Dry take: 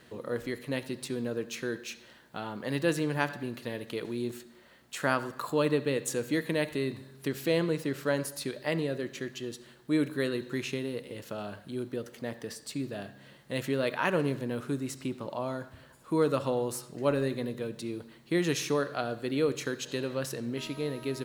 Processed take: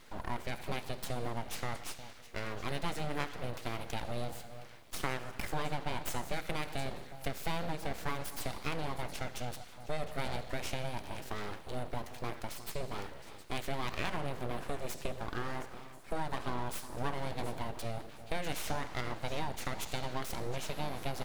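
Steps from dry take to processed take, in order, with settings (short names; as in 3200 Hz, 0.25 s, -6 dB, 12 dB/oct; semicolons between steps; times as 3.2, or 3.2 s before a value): compressor 4:1, threshold -32 dBFS, peak gain reduction 10 dB; echo with dull and thin repeats by turns 0.358 s, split 830 Hz, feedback 54%, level -12.5 dB; reverb RT60 1.2 s, pre-delay 8 ms, DRR 14.5 dB; full-wave rectifier; gain +1.5 dB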